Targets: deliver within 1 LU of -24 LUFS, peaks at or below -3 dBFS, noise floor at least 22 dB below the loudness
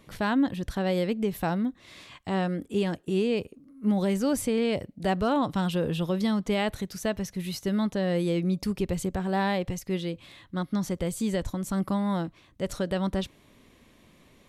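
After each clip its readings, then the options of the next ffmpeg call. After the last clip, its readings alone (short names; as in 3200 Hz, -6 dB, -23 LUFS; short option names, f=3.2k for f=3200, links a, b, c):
loudness -28.5 LUFS; peak -16.0 dBFS; loudness target -24.0 LUFS
-> -af "volume=4.5dB"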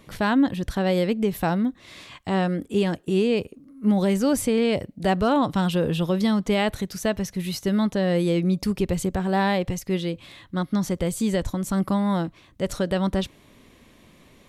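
loudness -24.0 LUFS; peak -11.5 dBFS; noise floor -55 dBFS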